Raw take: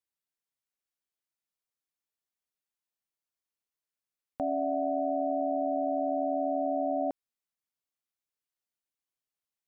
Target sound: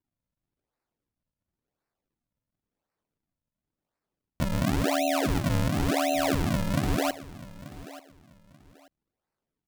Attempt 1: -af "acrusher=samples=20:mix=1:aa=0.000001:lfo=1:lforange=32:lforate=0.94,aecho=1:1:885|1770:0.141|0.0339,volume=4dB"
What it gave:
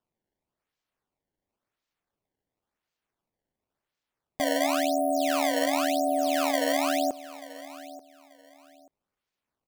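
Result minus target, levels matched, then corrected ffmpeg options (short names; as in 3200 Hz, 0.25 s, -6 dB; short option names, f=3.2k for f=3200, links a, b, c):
decimation with a swept rate: distortion -13 dB
-af "acrusher=samples=65:mix=1:aa=0.000001:lfo=1:lforange=104:lforate=0.94,aecho=1:1:885|1770:0.141|0.0339,volume=4dB"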